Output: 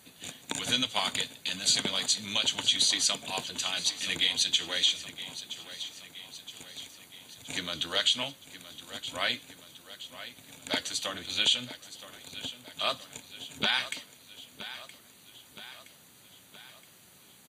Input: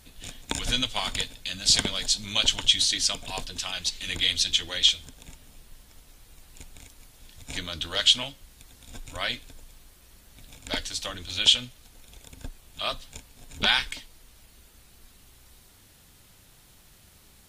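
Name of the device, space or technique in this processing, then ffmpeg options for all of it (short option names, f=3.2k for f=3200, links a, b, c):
PA system with an anti-feedback notch: -af "highpass=130,asuperstop=centerf=5300:order=20:qfactor=7.4,alimiter=limit=-13.5dB:level=0:latency=1:release=119,highpass=98,aecho=1:1:970|1940|2910|3880|4850|5820:0.2|0.112|0.0626|0.035|0.0196|0.011"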